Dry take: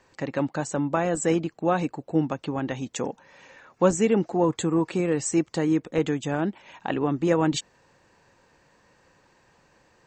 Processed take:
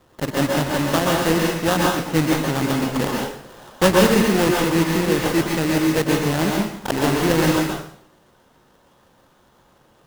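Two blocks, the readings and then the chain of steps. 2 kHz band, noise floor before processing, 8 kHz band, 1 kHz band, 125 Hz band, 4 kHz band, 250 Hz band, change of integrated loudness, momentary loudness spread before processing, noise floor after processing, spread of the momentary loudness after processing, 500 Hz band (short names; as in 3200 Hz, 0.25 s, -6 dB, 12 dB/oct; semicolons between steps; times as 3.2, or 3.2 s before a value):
+11.5 dB, -62 dBFS, +6.0 dB, +7.0 dB, +7.0 dB, +13.5 dB, +5.5 dB, +6.0 dB, 9 LU, -57 dBFS, 8 LU, +5.0 dB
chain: block floating point 3-bit; bell 140 Hz +3.5 dB; in parallel at -1 dB: vocal rider within 4 dB 0.5 s; on the sum: sample-rate reducer 2300 Hz, jitter 20%; plate-style reverb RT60 0.61 s, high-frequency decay 1×, pre-delay 0.11 s, DRR -1.5 dB; gain -3.5 dB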